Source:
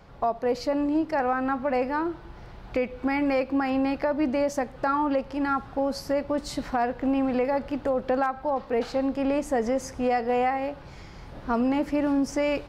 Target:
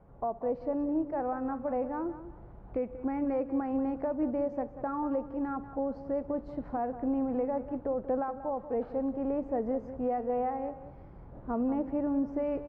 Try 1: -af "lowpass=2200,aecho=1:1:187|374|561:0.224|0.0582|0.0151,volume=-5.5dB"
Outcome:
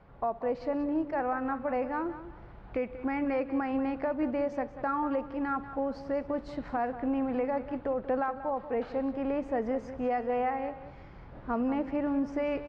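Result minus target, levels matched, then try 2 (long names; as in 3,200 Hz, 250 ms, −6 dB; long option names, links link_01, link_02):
2,000 Hz band +10.5 dB
-af "lowpass=840,aecho=1:1:187|374|561:0.224|0.0582|0.0151,volume=-5.5dB"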